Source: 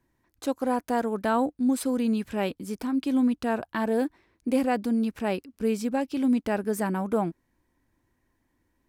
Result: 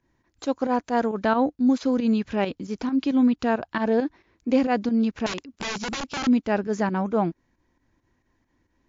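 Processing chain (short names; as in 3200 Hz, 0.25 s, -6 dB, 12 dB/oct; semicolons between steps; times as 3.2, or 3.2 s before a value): pump 135 bpm, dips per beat 2, -10 dB, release 99 ms; 5.26–6.27 wrapped overs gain 28 dB; gain +4 dB; WMA 128 kbps 16000 Hz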